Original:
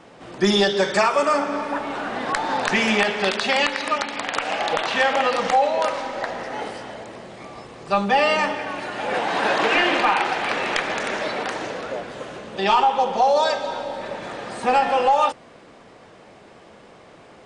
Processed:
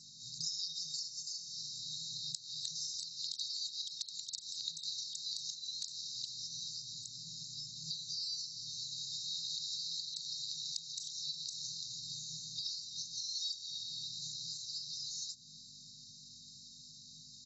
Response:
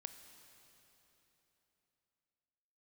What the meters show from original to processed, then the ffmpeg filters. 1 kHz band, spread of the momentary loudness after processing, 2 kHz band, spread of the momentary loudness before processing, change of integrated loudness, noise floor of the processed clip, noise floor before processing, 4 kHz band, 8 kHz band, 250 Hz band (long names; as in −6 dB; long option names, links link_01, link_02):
below −40 dB, 12 LU, below −40 dB, 14 LU, −18.0 dB, −55 dBFS, −47 dBFS, −9.0 dB, −3.0 dB, below −35 dB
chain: -filter_complex "[0:a]aemphasis=mode=production:type=bsi,afftfilt=real='re*(1-between(b*sr/4096,170,3700))':imag='im*(1-between(b*sr/4096,170,3700))':win_size=4096:overlap=0.75,aeval=exprs='val(0)+0.000447*(sin(2*PI*50*n/s)+sin(2*PI*2*50*n/s)/2+sin(2*PI*3*50*n/s)/3+sin(2*PI*4*50*n/s)/4+sin(2*PI*5*50*n/s)/5)':channel_layout=same,acompressor=threshold=-43dB:ratio=5,acrossover=split=160 7800:gain=0.1 1 0.0794[link_01][link_02][link_03];[link_01][link_02][link_03]amix=inputs=3:normalize=0,asplit=2[link_04][link_05];[link_05]adelay=816.3,volume=-19dB,highshelf=frequency=4000:gain=-18.4[link_06];[link_04][link_06]amix=inputs=2:normalize=0,volume=5.5dB" -ar 22050 -c:a aac -b:a 24k